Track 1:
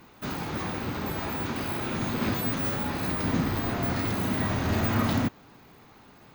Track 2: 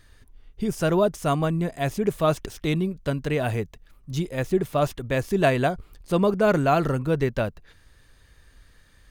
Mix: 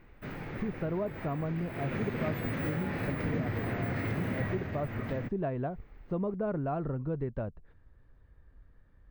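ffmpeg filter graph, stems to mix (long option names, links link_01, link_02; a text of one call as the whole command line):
ffmpeg -i stem1.wav -i stem2.wav -filter_complex "[0:a]equalizer=frequency=125:width_type=o:width=1:gain=8,equalizer=frequency=500:width_type=o:width=1:gain=7,equalizer=frequency=1000:width_type=o:width=1:gain=-4,equalizer=frequency=2000:width_type=o:width=1:gain=10,equalizer=frequency=4000:width_type=o:width=1:gain=-5,equalizer=frequency=8000:width_type=o:width=1:gain=-10,equalizer=frequency=16000:width_type=o:width=1:gain=-10,volume=-3dB,afade=type=in:start_time=1.73:duration=0.21:silence=0.375837,afade=type=out:start_time=4.44:duration=0.28:silence=0.298538[link_01];[1:a]lowpass=1200,lowshelf=frequency=330:gain=5,volume=-8dB[link_02];[link_01][link_02]amix=inputs=2:normalize=0,acompressor=threshold=-32dB:ratio=2.5" out.wav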